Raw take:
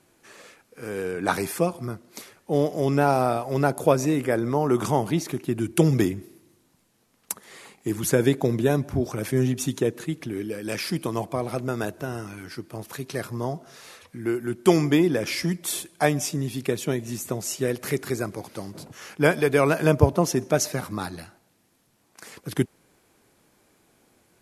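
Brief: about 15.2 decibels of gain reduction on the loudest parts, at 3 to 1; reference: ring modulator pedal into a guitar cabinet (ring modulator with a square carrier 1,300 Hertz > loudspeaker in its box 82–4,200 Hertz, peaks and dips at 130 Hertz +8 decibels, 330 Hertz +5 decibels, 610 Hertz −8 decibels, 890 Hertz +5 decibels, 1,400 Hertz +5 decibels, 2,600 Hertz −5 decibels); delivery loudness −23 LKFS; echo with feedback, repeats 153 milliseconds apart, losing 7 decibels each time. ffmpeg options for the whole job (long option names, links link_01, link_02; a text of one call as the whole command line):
ffmpeg -i in.wav -af "acompressor=threshold=-33dB:ratio=3,aecho=1:1:153|306|459|612|765:0.447|0.201|0.0905|0.0407|0.0183,aeval=exprs='val(0)*sgn(sin(2*PI*1300*n/s))':channel_layout=same,highpass=82,equalizer=frequency=130:width_type=q:width=4:gain=8,equalizer=frequency=330:width_type=q:width=4:gain=5,equalizer=frequency=610:width_type=q:width=4:gain=-8,equalizer=frequency=890:width_type=q:width=4:gain=5,equalizer=frequency=1400:width_type=q:width=4:gain=5,equalizer=frequency=2600:width_type=q:width=4:gain=-5,lowpass=frequency=4200:width=0.5412,lowpass=frequency=4200:width=1.3066,volume=9dB" out.wav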